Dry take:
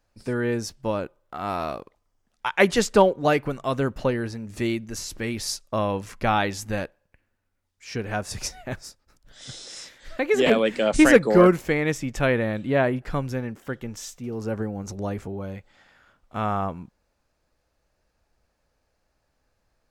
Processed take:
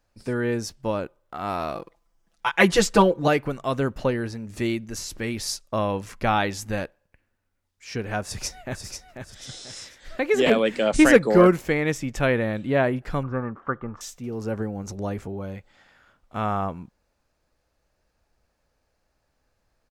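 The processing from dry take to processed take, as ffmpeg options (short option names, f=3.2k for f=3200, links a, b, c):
-filter_complex "[0:a]asettb=1/sr,asplit=3[a][b][c];[a]atrim=end=1.754[d];[b]atrim=start=1.75:end=3.28,asetpts=PTS-STARTPTS,afade=t=in:d=0.004:c=qsin,afade=t=out:st=1.526:d=0.004:c=qsin,aecho=1:1:6:0.92,atrim=end_sample=67473[e];[c]atrim=start=3.276[f];[d][e]acrossfade=d=0.004:c1=hsin:c2=qsin[g];[g][f]acrossfade=d=0.004:c1=qsin:c2=hsin,asplit=2[h][i];[i]afade=t=in:st=8.25:d=0.01,afade=t=out:st=8.85:d=0.01,aecho=0:1:490|980|1470|1960:0.473151|0.165603|0.057961|0.0202864[j];[h][j]amix=inputs=2:normalize=0,asettb=1/sr,asplit=3[k][l][m];[k]atrim=end=13.234[n];[l]atrim=start=13.23:end=14.01,asetpts=PTS-STARTPTS,afade=t=in:d=0.004:c=qsin,afade=t=out:st=0.776:d=0.004:c=qsin,lowpass=f=1.2k:t=q:w=9.2[o];[m]atrim=start=14.006[p];[n][o]acrossfade=d=0.004:c1=hsin:c2=qsin[q];[q][p]acrossfade=d=0.004:c1=qsin:c2=hsin"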